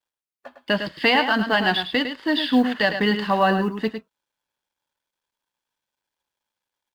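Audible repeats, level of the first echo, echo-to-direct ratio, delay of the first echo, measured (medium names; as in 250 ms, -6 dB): 1, -8.5 dB, -8.5 dB, 105 ms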